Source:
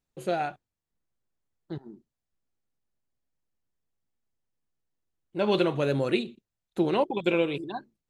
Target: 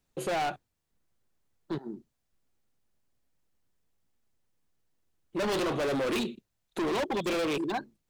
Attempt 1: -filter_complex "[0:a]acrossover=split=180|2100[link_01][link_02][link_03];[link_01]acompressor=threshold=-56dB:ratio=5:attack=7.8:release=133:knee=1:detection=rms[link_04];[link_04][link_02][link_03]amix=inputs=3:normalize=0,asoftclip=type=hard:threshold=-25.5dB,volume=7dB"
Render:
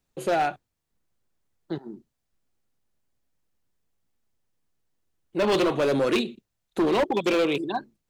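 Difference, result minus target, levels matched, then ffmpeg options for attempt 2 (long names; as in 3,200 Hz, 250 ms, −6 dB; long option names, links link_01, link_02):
hard clipping: distortion −5 dB
-filter_complex "[0:a]acrossover=split=180|2100[link_01][link_02][link_03];[link_01]acompressor=threshold=-56dB:ratio=5:attack=7.8:release=133:knee=1:detection=rms[link_04];[link_04][link_02][link_03]amix=inputs=3:normalize=0,asoftclip=type=hard:threshold=-34.5dB,volume=7dB"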